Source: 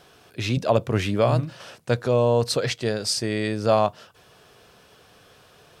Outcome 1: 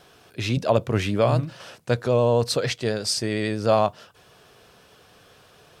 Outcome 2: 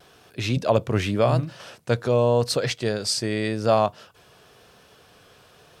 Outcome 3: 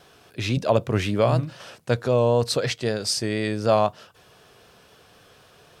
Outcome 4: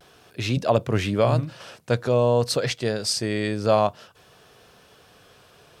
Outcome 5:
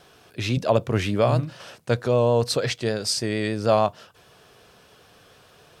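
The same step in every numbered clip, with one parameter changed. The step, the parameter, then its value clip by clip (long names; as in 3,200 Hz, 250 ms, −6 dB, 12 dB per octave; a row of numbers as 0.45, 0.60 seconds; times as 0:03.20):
pitch vibrato, speed: 11, 0.9, 3.9, 0.49, 6.6 Hertz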